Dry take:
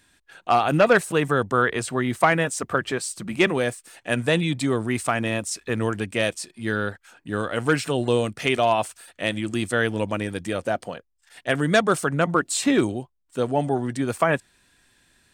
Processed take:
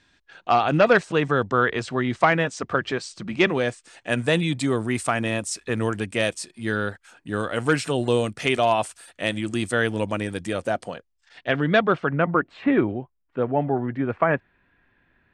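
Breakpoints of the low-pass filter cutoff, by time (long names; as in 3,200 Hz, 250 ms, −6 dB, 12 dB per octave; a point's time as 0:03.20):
low-pass filter 24 dB per octave
0:03.47 6,000 Hz
0:04.53 11,000 Hz
0:10.81 11,000 Hz
0:11.49 4,500 Hz
0:12.36 2,300 Hz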